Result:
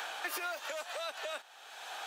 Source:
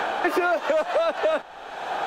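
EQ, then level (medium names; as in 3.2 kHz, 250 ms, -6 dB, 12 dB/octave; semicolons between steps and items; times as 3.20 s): differentiator; +1.0 dB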